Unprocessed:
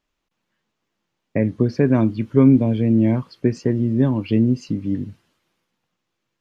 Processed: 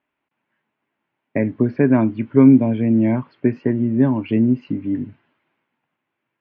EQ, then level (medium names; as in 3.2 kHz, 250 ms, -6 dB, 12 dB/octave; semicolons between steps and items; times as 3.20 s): cabinet simulation 190–2300 Hz, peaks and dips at 190 Hz -10 dB, 340 Hz -5 dB, 490 Hz -10 dB, 730 Hz -3 dB, 1.2 kHz -7 dB, 1.8 kHz -3 dB; +7.0 dB